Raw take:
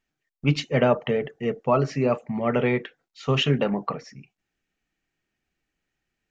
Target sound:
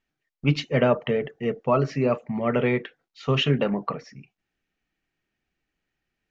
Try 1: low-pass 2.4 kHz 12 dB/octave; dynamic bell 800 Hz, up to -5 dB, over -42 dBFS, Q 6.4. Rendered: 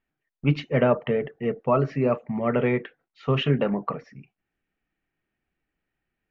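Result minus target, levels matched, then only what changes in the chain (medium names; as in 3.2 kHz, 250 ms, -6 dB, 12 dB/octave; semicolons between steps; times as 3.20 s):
4 kHz band -5.0 dB
change: low-pass 5.5 kHz 12 dB/octave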